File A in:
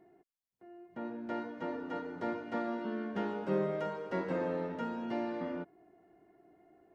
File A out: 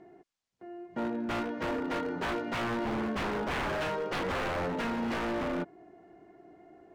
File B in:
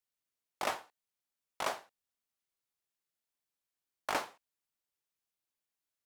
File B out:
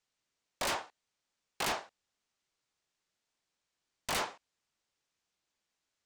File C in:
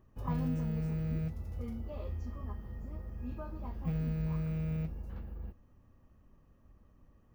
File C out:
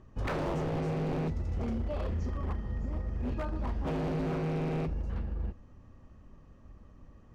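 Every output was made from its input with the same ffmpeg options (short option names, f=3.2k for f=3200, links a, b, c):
-af "lowpass=f=7.6k:w=0.5412,lowpass=f=7.6k:w=1.3066,aeval=exprs='0.0168*(abs(mod(val(0)/0.0168+3,4)-2)-1)':c=same,volume=8.5dB"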